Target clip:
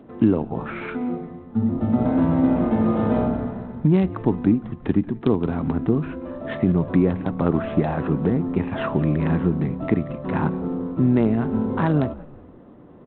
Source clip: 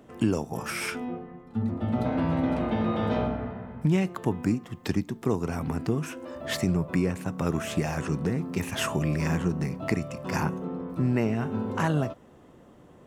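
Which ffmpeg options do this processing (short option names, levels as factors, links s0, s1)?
-filter_complex "[0:a]lowpass=1600,equalizer=f=270:w=1.3:g=5.5,asplit=4[s0][s1][s2][s3];[s1]adelay=178,afreqshift=-81,volume=0.112[s4];[s2]adelay=356,afreqshift=-162,volume=0.0462[s5];[s3]adelay=534,afreqshift=-243,volume=0.0188[s6];[s0][s4][s5][s6]amix=inputs=4:normalize=0,asettb=1/sr,asplit=3[s7][s8][s9];[s7]atrim=end=6.724[s10];[s8]atrim=start=6.72:end=8.88,asetpts=PTS-STARTPTS,afade=t=in:d=0.004:c=qsin,afade=t=out:st=2.156:d=0.004:c=qsin,adynamicequalizer=threshold=0.00708:dfrequency=750:dqfactor=1.1:tfrequency=750:tqfactor=1.1:attack=5:release=100:ratio=0.375:range=2:mode=boostabove:tftype=bell[s11];[s9]atrim=start=8.876[s12];[s10][s11]acrossfade=d=0.004:c1=hsin:c2=qsin[s13];[s13][s12]acrossfade=d=0.004:c1=qsin:c2=hsin,volume=1.5" -ar 8000 -c:a adpcm_g726 -b:a 32k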